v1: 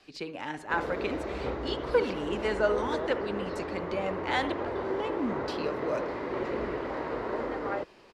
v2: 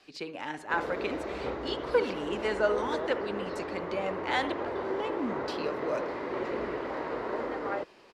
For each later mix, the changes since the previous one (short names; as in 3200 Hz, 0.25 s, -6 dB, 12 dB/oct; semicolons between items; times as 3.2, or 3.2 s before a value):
master: add low shelf 140 Hz -8.5 dB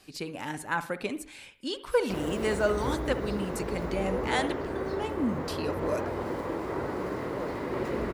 background: entry +1.40 s; master: remove three-band isolator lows -12 dB, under 280 Hz, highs -20 dB, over 5600 Hz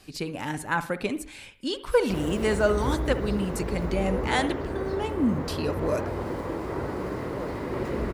speech +3.0 dB; master: add low shelf 140 Hz +8.5 dB